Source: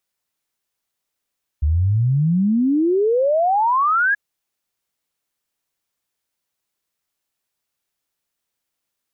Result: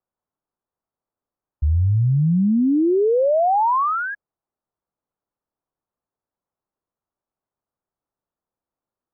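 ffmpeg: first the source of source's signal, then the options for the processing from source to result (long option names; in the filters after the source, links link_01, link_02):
-f lavfi -i "aevalsrc='0.2*clip(min(t,2.53-t)/0.01,0,1)*sin(2*PI*71*2.53/log(1700/71)*(exp(log(1700/71)*t/2.53)-1))':duration=2.53:sample_rate=44100"
-af "lowpass=frequency=1200:width=0.5412,lowpass=frequency=1200:width=1.3066"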